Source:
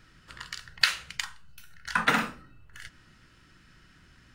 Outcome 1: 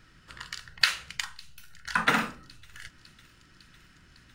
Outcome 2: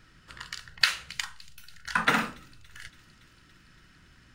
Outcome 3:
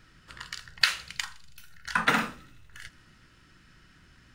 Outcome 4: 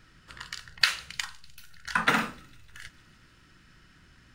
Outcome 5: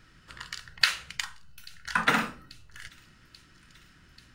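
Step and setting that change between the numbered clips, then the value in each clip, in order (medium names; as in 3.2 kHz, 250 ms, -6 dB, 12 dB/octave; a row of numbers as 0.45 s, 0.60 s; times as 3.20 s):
feedback echo behind a high-pass, time: 554 ms, 283 ms, 81 ms, 151 ms, 837 ms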